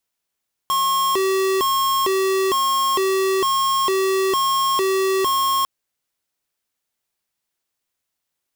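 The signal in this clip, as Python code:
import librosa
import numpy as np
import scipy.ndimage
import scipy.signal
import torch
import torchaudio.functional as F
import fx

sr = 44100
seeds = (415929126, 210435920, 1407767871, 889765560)

y = fx.siren(sr, length_s=4.95, kind='hi-lo', low_hz=383.0, high_hz=1080.0, per_s=1.1, wave='square', level_db=-19.0)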